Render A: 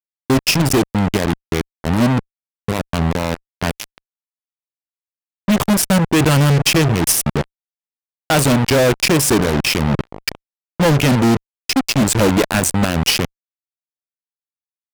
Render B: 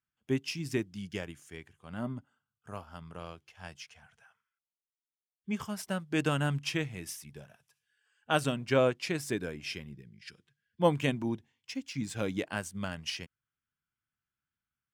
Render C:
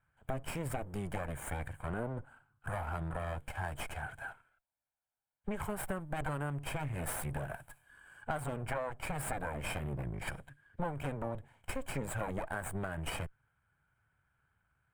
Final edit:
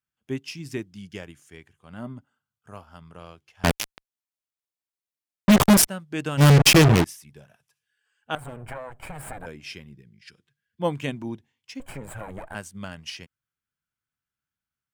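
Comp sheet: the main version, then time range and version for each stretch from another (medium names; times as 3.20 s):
B
3.64–5.87 s: from A
6.40–7.03 s: from A, crossfade 0.06 s
8.35–9.46 s: from C
11.80–12.55 s: from C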